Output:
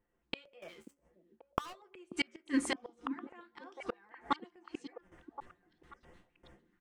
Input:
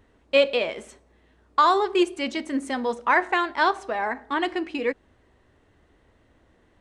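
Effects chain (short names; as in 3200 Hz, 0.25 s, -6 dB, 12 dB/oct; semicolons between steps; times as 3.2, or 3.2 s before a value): gate with hold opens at -49 dBFS; comb 5.7 ms, depth 66%; 0.62–1.73 sample leveller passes 5; flange 1.6 Hz, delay 9.7 ms, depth 5.4 ms, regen +37%; flipped gate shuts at -23 dBFS, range -38 dB; LFO notch square 2.2 Hz 600–4000 Hz; delay with a stepping band-pass 0.536 s, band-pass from 250 Hz, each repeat 1.4 oct, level -7 dB; noise-modulated level, depth 50%; gain +8.5 dB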